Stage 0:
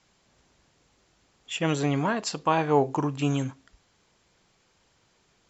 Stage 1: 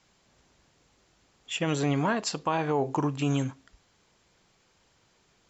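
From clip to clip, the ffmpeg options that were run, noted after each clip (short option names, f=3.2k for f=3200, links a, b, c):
-af "alimiter=limit=-16dB:level=0:latency=1:release=63"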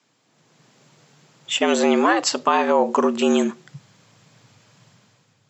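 -af "dynaudnorm=f=120:g=9:m=10dB,asubboost=boost=4.5:cutoff=81,afreqshift=98"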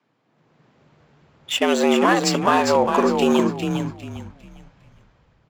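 -filter_complex "[0:a]adynamicsmooth=sensitivity=7:basefreq=2.3k,asplit=2[a][b];[b]asplit=4[c][d][e][f];[c]adelay=403,afreqshift=-66,volume=-6dB[g];[d]adelay=806,afreqshift=-132,volume=-16.2dB[h];[e]adelay=1209,afreqshift=-198,volume=-26.3dB[i];[f]adelay=1612,afreqshift=-264,volume=-36.5dB[j];[g][h][i][j]amix=inputs=4:normalize=0[k];[a][k]amix=inputs=2:normalize=0"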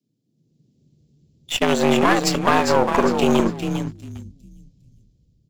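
-filter_complex "[0:a]aeval=exprs='0.668*(cos(1*acos(clip(val(0)/0.668,-1,1)))-cos(1*PI/2))+0.119*(cos(4*acos(clip(val(0)/0.668,-1,1)))-cos(4*PI/2))':c=same,acrossover=split=340|4600[a][b][c];[b]aeval=exprs='sgn(val(0))*max(abs(val(0))-0.0112,0)':c=same[d];[a][d][c]amix=inputs=3:normalize=0"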